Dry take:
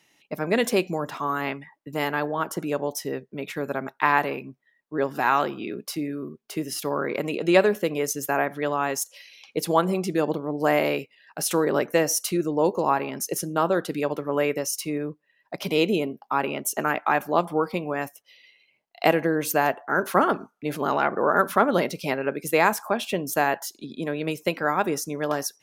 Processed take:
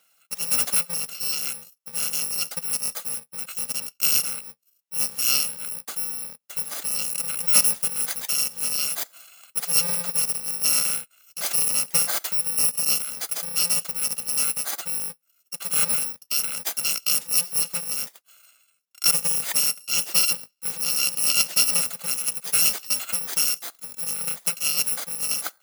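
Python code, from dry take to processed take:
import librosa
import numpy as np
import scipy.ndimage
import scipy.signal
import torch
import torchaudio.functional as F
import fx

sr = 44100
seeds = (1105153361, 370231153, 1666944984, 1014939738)

y = fx.bit_reversed(x, sr, seeds[0], block=128)
y = scipy.signal.sosfilt(scipy.signal.butter(2, 260.0, 'highpass', fs=sr, output='sos'), y)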